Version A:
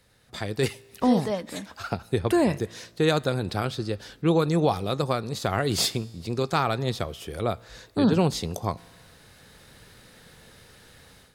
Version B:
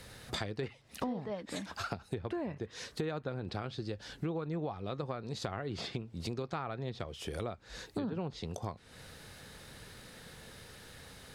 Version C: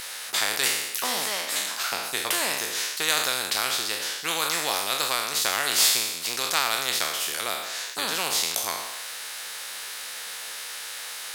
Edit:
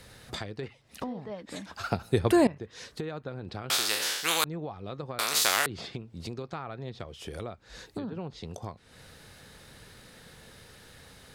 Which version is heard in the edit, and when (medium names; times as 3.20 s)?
B
1.83–2.47 s: from A
3.70–4.44 s: from C
5.19–5.66 s: from C